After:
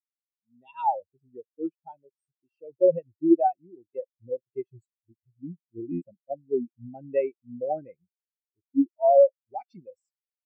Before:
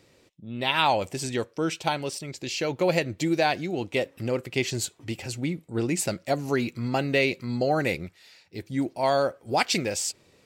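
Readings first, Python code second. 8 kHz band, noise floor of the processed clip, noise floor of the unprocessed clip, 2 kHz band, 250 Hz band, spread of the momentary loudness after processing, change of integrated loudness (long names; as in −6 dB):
below −40 dB, below −85 dBFS, −61 dBFS, below −25 dB, −0.5 dB, 20 LU, +1.0 dB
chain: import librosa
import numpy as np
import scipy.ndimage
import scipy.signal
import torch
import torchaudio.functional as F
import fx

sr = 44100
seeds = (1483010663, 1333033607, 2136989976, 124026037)

y = fx.buffer_glitch(x, sr, at_s=(2.18, 5.91, 8.64), block=512, repeats=8)
y = fx.spectral_expand(y, sr, expansion=4.0)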